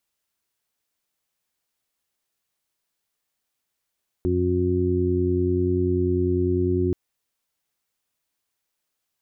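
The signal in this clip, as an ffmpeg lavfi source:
ffmpeg -f lavfi -i "aevalsrc='0.0631*sin(2*PI*90.1*t)+0.0316*sin(2*PI*180.2*t)+0.0473*sin(2*PI*270.3*t)+0.0794*sin(2*PI*360.4*t)':duration=2.68:sample_rate=44100" out.wav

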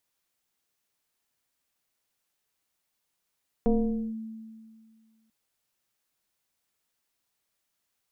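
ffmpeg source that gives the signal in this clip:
ffmpeg -f lavfi -i "aevalsrc='0.126*pow(10,-3*t/2)*sin(2*PI*222*t+1.3*clip(1-t/0.48,0,1)*sin(2*PI*1.09*222*t))':duration=1.64:sample_rate=44100" out.wav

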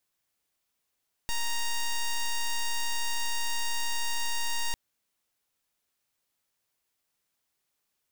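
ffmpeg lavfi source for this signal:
ffmpeg -f lavfi -i "aevalsrc='0.0398*(2*lt(mod(933*t,1),0.07)-1)':duration=3.45:sample_rate=44100" out.wav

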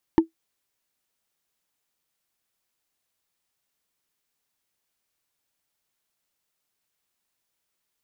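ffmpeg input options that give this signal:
ffmpeg -f lavfi -i "aevalsrc='0.422*pow(10,-3*t/0.12)*sin(2*PI*326*t)+0.158*pow(10,-3*t/0.036)*sin(2*PI*898.8*t)+0.0596*pow(10,-3*t/0.016)*sin(2*PI*1761.7*t)+0.0224*pow(10,-3*t/0.009)*sin(2*PI*2912.2*t)+0.00841*pow(10,-3*t/0.005)*sin(2*PI*4348.8*t)':duration=0.45:sample_rate=44100" out.wav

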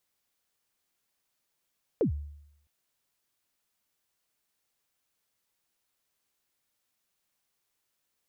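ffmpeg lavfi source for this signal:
ffmpeg -f lavfi -i "aevalsrc='0.1*pow(10,-3*t/0.78)*sin(2*PI*(530*0.105/log(73/530)*(exp(log(73/530)*min(t,0.105)/0.105)-1)+73*max(t-0.105,0)))':duration=0.66:sample_rate=44100" out.wav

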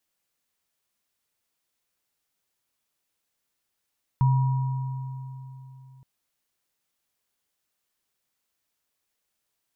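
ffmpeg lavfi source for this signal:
ffmpeg -f lavfi -i "aevalsrc='0.158*pow(10,-3*t/3.36)*sin(2*PI*131*t)+0.0398*pow(10,-3*t/2.85)*sin(2*PI*962*t)':duration=1.82:sample_rate=44100" out.wav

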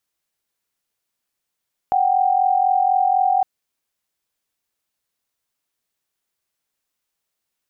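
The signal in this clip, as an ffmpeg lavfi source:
ffmpeg -f lavfi -i "aevalsrc='0.141*(sin(2*PI*739.99*t)+sin(2*PI*783.99*t))':duration=1.51:sample_rate=44100" out.wav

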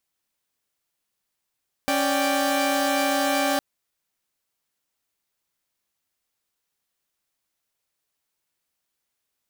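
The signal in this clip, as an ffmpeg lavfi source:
ffmpeg -f lavfi -i "aevalsrc='0.075*((2*mod(277.18*t,1)-1)+(2*mod(587.33*t,1)-1)+(2*mod(783.99*t,1)-1))':duration=1.71:sample_rate=44100" out.wav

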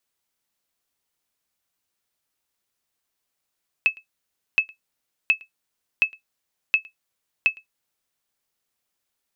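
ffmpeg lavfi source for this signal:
ffmpeg -f lavfi -i "aevalsrc='0.376*(sin(2*PI*2600*mod(t,0.72))*exp(-6.91*mod(t,0.72)/0.12)+0.0473*sin(2*PI*2600*max(mod(t,0.72)-0.11,0))*exp(-6.91*max(mod(t,0.72)-0.11,0)/0.12))':duration=4.32:sample_rate=44100" out.wav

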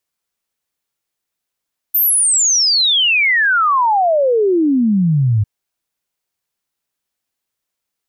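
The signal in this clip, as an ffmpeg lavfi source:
ffmpeg -f lavfi -i "aevalsrc='0.299*clip(min(t,3.5-t)/0.01,0,1)*sin(2*PI*14000*3.5/log(100/14000)*(exp(log(100/14000)*t/3.5)-1))':duration=3.5:sample_rate=44100" out.wav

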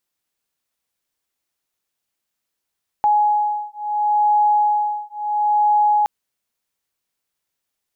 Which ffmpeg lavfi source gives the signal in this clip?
ffmpeg -f lavfi -i "aevalsrc='0.126*(sin(2*PI*837*t)+sin(2*PI*837.73*t))':duration=3.02:sample_rate=44100" out.wav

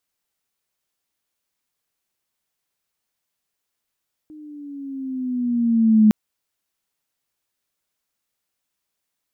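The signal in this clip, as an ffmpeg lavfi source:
ffmpeg -f lavfi -i "aevalsrc='pow(10,(-8.5+29.5*(t/1.81-1))/20)*sin(2*PI*309*1.81/(-6.5*log(2)/12)*(exp(-6.5*log(2)/12*t/1.81)-1))':duration=1.81:sample_rate=44100" out.wav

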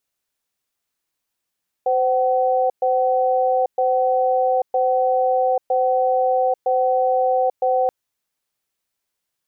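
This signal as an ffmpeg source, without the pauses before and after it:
ffmpeg -f lavfi -i "aevalsrc='0.126*(sin(2*PI*515*t)+sin(2*PI*757*t))*clip(min(mod(t,0.96),0.84-mod(t,0.96))/0.005,0,1)':duration=6.03:sample_rate=44100" out.wav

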